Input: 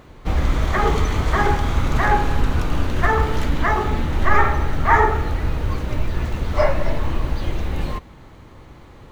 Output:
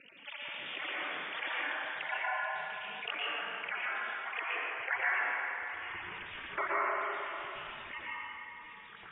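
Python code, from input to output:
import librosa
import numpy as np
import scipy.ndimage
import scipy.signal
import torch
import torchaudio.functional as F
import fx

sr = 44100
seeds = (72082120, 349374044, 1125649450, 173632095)

y = fx.sine_speech(x, sr)
y = scipy.signal.sosfilt(scipy.signal.butter(2, 1400.0, 'lowpass', fs=sr, output='sos'), y)
y = fx.dereverb_blind(y, sr, rt60_s=1.6)
y = fx.highpass(y, sr, hz=fx.steps((0.0, 670.0), (5.46, 180.0)), slope=24)
y = fx.spec_gate(y, sr, threshold_db=-25, keep='weak')
y = y * np.sin(2.0 * np.pi * 130.0 * np.arange(len(y)) / sr)
y = y + 10.0 ** (-24.0 / 20.0) * np.pad(y, (int(598 * sr / 1000.0), 0))[:len(y)]
y = fx.rev_plate(y, sr, seeds[0], rt60_s=1.7, hf_ratio=0.7, predelay_ms=105, drr_db=-7.5)
y = fx.env_flatten(y, sr, amount_pct=50)
y = y * 10.0 ** (-3.5 / 20.0)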